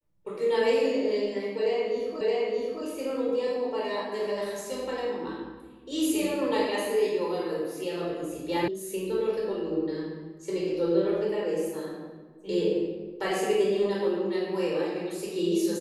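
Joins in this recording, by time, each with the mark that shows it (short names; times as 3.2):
2.21 repeat of the last 0.62 s
8.68 sound cut off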